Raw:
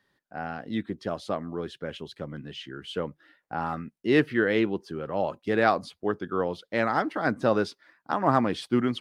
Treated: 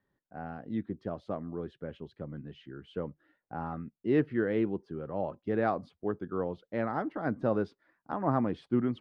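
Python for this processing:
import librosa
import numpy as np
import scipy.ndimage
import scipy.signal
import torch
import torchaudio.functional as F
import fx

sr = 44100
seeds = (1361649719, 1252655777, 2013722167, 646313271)

y = fx.lowpass(x, sr, hz=1300.0, slope=6)
y = fx.tilt_eq(y, sr, slope=-1.5)
y = F.gain(torch.from_numpy(y), -6.5).numpy()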